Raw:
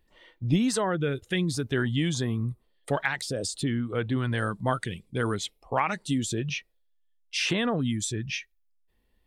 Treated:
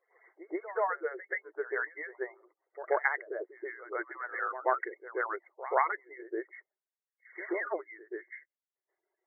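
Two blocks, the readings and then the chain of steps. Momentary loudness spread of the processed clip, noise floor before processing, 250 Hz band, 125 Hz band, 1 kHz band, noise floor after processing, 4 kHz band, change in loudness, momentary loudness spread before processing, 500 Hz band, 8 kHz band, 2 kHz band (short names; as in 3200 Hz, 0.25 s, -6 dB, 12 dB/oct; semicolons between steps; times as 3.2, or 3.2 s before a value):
14 LU, -69 dBFS, -17.0 dB, under -40 dB, -1.0 dB, under -85 dBFS, under -40 dB, -6.5 dB, 8 LU, -3.5 dB, under -40 dB, -2.5 dB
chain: median-filter separation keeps percussive; brick-wall FIR band-pass 330–2200 Hz; pre-echo 0.131 s -14.5 dB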